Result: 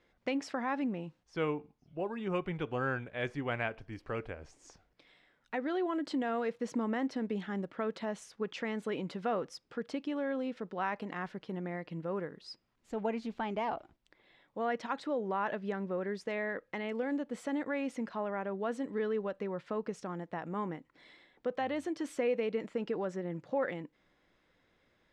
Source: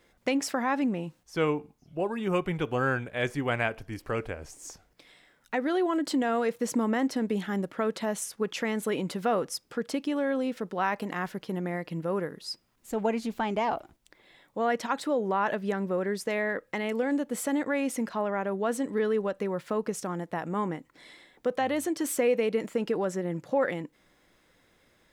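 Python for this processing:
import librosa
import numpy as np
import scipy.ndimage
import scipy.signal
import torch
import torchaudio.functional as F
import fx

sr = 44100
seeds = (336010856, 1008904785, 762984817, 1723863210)

y = scipy.signal.sosfilt(scipy.signal.butter(2, 4400.0, 'lowpass', fs=sr, output='sos'), x)
y = y * 10.0 ** (-6.5 / 20.0)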